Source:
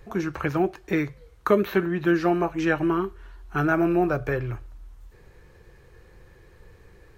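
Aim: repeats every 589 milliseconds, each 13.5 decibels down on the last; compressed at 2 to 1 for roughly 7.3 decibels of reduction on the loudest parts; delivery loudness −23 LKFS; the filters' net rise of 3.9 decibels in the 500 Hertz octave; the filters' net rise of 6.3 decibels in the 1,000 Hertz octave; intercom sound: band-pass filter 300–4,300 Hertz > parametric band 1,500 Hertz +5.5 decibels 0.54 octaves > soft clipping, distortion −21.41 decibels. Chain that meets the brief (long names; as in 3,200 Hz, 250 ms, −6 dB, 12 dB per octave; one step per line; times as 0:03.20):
parametric band 500 Hz +6 dB
parametric band 1,000 Hz +4.5 dB
downward compressor 2 to 1, threshold −22 dBFS
band-pass filter 300–4,300 Hz
parametric band 1,500 Hz +5.5 dB 0.54 octaves
repeating echo 589 ms, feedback 21%, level −13.5 dB
soft clipping −11 dBFS
level +3.5 dB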